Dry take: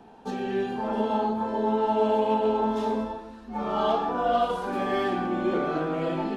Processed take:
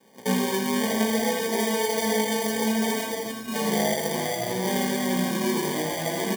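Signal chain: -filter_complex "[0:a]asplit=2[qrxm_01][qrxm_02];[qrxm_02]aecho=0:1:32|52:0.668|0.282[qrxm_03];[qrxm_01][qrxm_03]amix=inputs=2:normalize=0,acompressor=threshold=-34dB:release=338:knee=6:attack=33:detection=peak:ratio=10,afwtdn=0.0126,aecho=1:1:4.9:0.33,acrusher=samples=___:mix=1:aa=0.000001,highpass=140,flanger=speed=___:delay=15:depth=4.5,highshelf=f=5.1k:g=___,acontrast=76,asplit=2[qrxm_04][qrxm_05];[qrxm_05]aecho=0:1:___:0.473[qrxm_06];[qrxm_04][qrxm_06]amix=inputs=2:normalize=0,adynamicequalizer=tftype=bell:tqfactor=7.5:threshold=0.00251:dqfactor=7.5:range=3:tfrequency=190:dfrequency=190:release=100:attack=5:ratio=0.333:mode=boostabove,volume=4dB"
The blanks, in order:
33, 0.62, 7, 81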